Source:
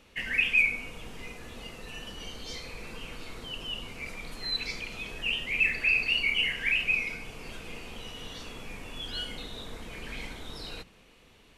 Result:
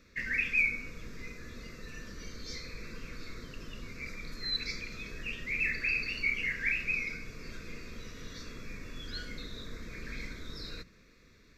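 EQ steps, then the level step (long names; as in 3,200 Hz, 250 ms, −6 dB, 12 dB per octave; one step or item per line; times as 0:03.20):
phaser with its sweep stopped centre 3,000 Hz, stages 6
0.0 dB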